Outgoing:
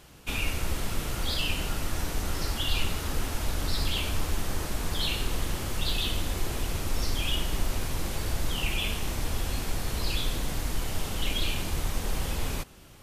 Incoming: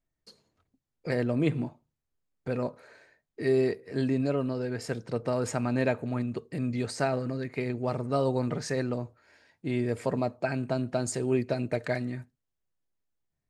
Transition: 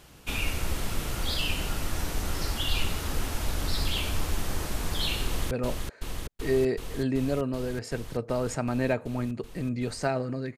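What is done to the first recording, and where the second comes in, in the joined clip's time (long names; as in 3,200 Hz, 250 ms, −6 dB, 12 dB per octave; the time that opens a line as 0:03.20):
outgoing
0:05.25–0:05.51: delay throw 380 ms, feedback 85%, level −4 dB
0:05.51: continue with incoming from 0:02.48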